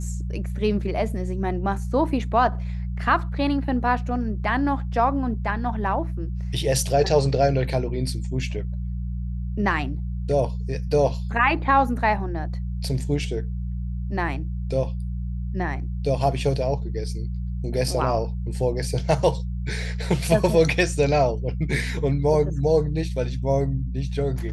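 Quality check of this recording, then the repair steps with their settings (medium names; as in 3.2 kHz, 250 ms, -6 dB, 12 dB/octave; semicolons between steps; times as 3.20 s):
hum 60 Hz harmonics 3 -28 dBFS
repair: de-hum 60 Hz, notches 3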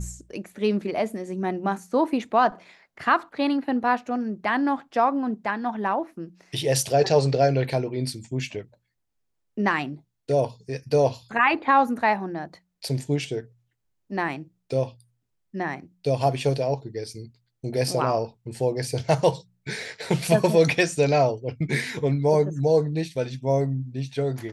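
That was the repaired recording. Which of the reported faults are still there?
nothing left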